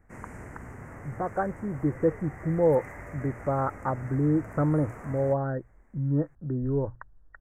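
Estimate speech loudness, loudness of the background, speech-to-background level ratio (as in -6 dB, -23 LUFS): -28.5 LUFS, -43.5 LUFS, 15.0 dB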